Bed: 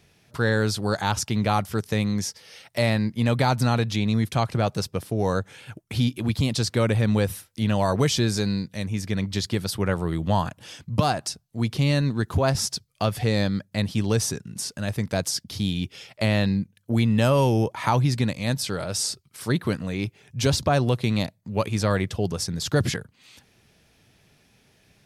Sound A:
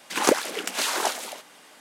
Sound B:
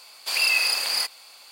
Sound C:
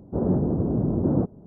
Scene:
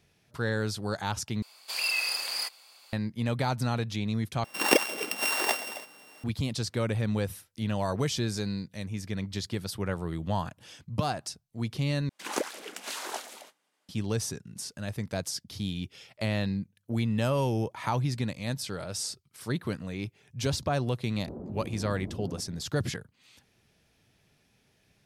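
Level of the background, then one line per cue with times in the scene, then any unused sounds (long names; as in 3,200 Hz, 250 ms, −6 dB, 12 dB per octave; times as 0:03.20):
bed −7.5 dB
0:01.42: overwrite with B −7.5 dB
0:04.44: overwrite with A −2 dB + samples sorted by size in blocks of 16 samples
0:12.09: overwrite with A −11 dB + downward expander −42 dBFS
0:21.15: mix in C −3 dB + downward compressor 16 to 1, threshold −33 dBFS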